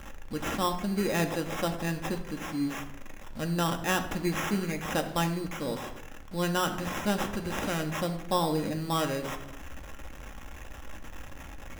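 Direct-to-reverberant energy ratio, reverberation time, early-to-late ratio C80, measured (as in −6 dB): 4.0 dB, 0.80 s, 13.0 dB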